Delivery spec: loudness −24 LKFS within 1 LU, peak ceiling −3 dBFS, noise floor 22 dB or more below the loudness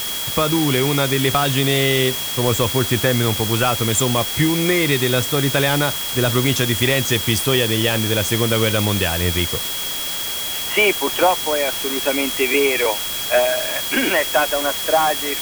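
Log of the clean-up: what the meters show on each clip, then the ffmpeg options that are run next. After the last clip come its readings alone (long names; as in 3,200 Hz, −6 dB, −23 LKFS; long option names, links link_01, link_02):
interfering tone 3,300 Hz; level of the tone −27 dBFS; background noise floor −25 dBFS; target noise floor −40 dBFS; integrated loudness −17.5 LKFS; sample peak −4.0 dBFS; target loudness −24.0 LKFS
→ -af "bandreject=frequency=3300:width=30"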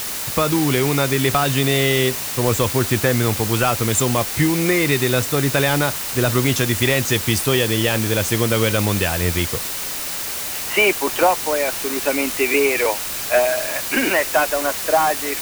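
interfering tone none found; background noise floor −27 dBFS; target noise floor −41 dBFS
→ -af "afftdn=noise_reduction=14:noise_floor=-27"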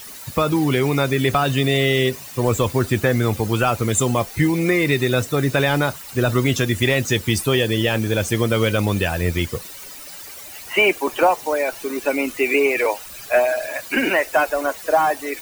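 background noise floor −37 dBFS; target noise floor −42 dBFS
→ -af "afftdn=noise_reduction=6:noise_floor=-37"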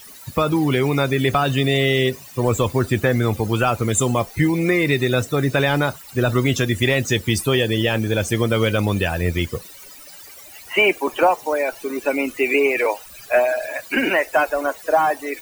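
background noise floor −41 dBFS; target noise floor −42 dBFS
→ -af "afftdn=noise_reduction=6:noise_floor=-41"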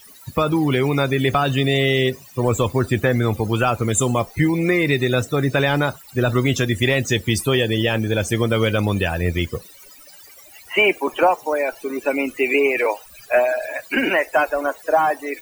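background noise floor −45 dBFS; integrated loudness −19.5 LKFS; sample peak −5.5 dBFS; target loudness −24.0 LKFS
→ -af "volume=-4.5dB"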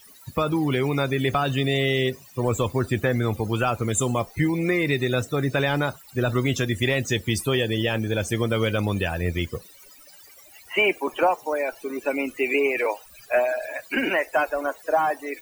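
integrated loudness −24.0 LKFS; sample peak −10.0 dBFS; background noise floor −49 dBFS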